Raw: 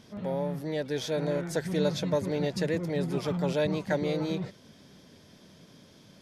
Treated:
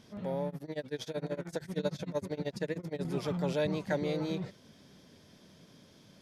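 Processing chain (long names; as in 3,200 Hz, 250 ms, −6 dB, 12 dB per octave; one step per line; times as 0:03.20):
0:00.48–0:03.05: amplitude tremolo 13 Hz, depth 95%
level −3.5 dB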